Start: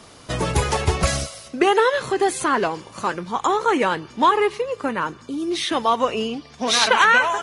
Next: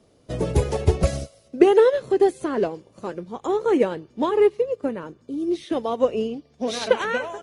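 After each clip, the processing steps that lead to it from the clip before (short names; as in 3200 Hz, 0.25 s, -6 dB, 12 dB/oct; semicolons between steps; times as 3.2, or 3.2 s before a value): resonant low shelf 740 Hz +9.5 dB, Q 1.5; upward expander 1.5:1, over -31 dBFS; gain -6 dB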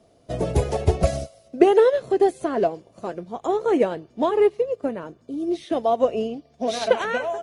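bell 680 Hz +11.5 dB 0.22 oct; gain -1 dB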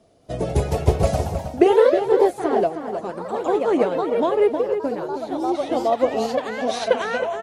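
echoes that change speed 0.22 s, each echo +2 st, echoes 3, each echo -6 dB; outdoor echo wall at 54 m, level -8 dB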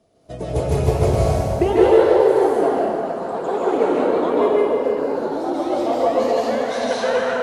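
plate-style reverb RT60 2 s, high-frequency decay 0.65×, pre-delay 0.12 s, DRR -5.5 dB; gain -4.5 dB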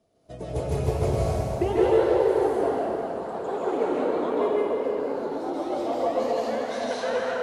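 warbling echo 0.25 s, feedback 70%, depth 76 cents, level -13 dB; gain -7.5 dB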